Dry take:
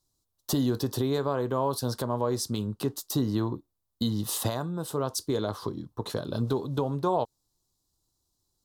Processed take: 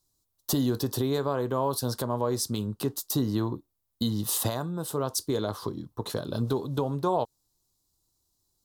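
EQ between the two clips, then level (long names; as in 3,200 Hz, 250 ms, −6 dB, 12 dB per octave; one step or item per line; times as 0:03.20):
high-shelf EQ 9,100 Hz +6.5 dB
0.0 dB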